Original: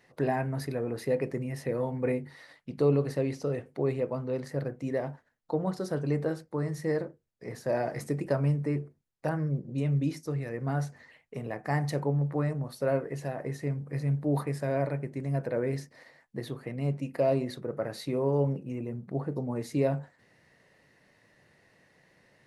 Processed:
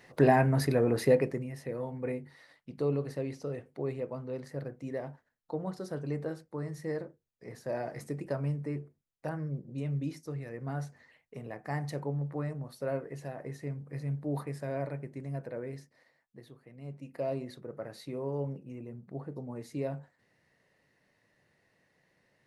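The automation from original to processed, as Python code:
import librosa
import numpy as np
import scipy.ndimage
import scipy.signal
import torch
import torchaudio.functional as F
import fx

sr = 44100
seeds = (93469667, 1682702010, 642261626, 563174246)

y = fx.gain(x, sr, db=fx.line((1.07, 6.0), (1.53, -6.0), (15.16, -6.0), (16.67, -17.0), (17.22, -8.0)))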